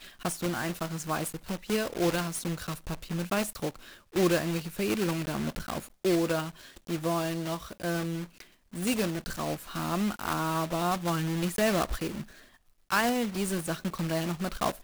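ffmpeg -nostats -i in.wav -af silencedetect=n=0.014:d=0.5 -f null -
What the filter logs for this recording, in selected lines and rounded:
silence_start: 12.23
silence_end: 12.91 | silence_duration: 0.68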